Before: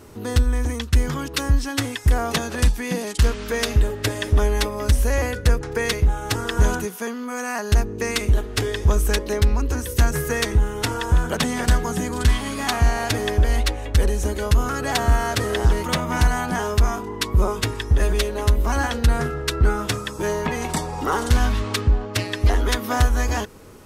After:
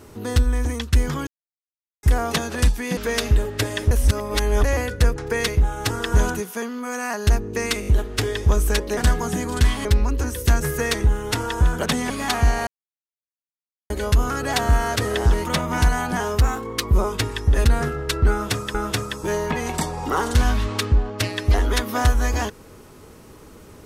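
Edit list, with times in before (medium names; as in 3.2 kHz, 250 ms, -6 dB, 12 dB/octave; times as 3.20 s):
1.27–2.03 s: mute
2.97–3.42 s: delete
4.36–5.09 s: reverse
8.26 s: stutter 0.02 s, 4 plays
11.61–12.49 s: move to 9.36 s
13.06–14.29 s: mute
16.78–17.27 s: speed 110%
18.08–19.03 s: delete
19.70–20.13 s: loop, 2 plays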